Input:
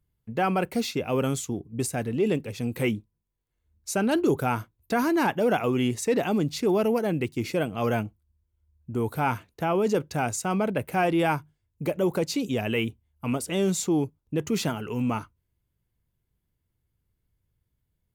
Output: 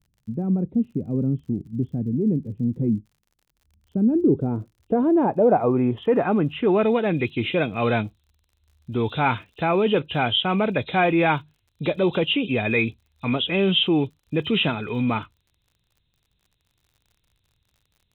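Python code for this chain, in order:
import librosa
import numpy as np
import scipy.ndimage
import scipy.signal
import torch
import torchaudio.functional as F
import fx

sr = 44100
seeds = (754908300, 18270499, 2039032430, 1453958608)

y = fx.freq_compress(x, sr, knee_hz=2400.0, ratio=4.0)
y = fx.filter_sweep_lowpass(y, sr, from_hz=230.0, to_hz=3000.0, start_s=3.94, end_s=7.32, q=1.5)
y = fx.dmg_crackle(y, sr, seeds[0], per_s=57.0, level_db=-52.0)
y = y * 10.0 ** (3.5 / 20.0)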